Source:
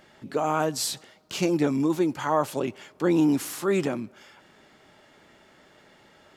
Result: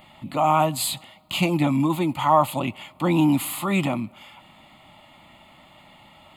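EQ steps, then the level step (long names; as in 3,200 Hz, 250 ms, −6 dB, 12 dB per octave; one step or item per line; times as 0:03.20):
phaser with its sweep stopped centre 1,600 Hz, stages 6
+9.0 dB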